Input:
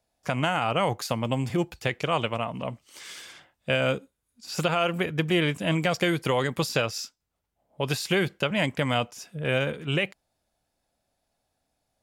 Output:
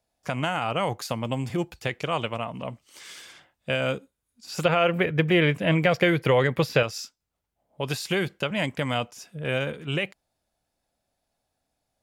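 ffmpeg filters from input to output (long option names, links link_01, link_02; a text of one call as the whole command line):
ffmpeg -i in.wav -filter_complex "[0:a]asettb=1/sr,asplit=3[link_01][link_02][link_03];[link_01]atrim=end=4.654[link_04];[link_02]atrim=start=4.65:end=6.83,asetpts=PTS-STARTPTS,afade=type=in:duration=0.004:curve=qsin,afade=type=out:start_time=2.176:duration=0.004:curve=qsin,equalizer=frequency=125:width_type=o:width=1:gain=7,equalizer=frequency=500:width_type=o:width=1:gain=7,equalizer=frequency=2000:width_type=o:width=1:gain=7,equalizer=frequency=8000:width_type=o:width=1:gain=-9[link_05];[link_03]atrim=start=6.826[link_06];[link_04][link_05]acrossfade=duration=0.004:curve1=hsin:curve2=qsin[link_07];[link_07][link_06]acrossfade=duration=0.004:curve1=qsin:curve2=hsin,volume=-1.5dB" out.wav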